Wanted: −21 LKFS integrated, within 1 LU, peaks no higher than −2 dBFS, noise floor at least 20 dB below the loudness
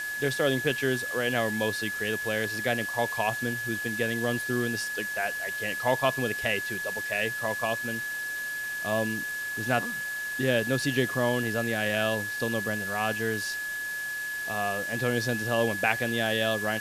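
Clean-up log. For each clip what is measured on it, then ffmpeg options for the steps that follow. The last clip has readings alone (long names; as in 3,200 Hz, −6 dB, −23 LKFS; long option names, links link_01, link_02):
interfering tone 1,700 Hz; level of the tone −31 dBFS; background noise floor −34 dBFS; target noise floor −48 dBFS; integrated loudness −28.0 LKFS; sample peak −8.5 dBFS; target loudness −21.0 LKFS
→ -af "bandreject=frequency=1700:width=30"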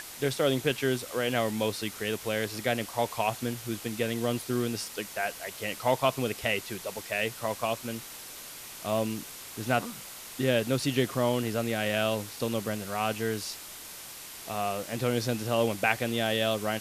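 interfering tone none found; background noise floor −44 dBFS; target noise floor −50 dBFS
→ -af "afftdn=noise_reduction=6:noise_floor=-44"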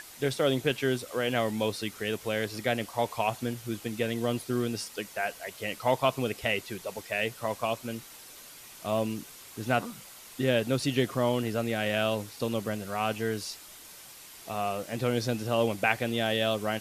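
background noise floor −49 dBFS; target noise floor −50 dBFS
→ -af "afftdn=noise_reduction=6:noise_floor=-49"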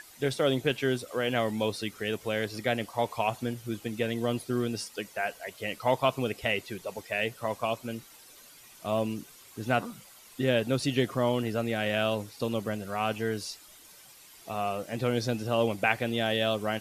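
background noise floor −53 dBFS; integrated loudness −30.5 LKFS; sample peak −8.5 dBFS; target loudness −21.0 LKFS
→ -af "volume=9.5dB,alimiter=limit=-2dB:level=0:latency=1"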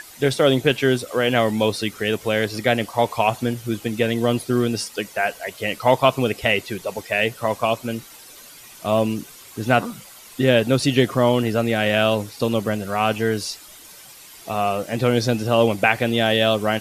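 integrated loudness −21.0 LKFS; sample peak −2.0 dBFS; background noise floor −44 dBFS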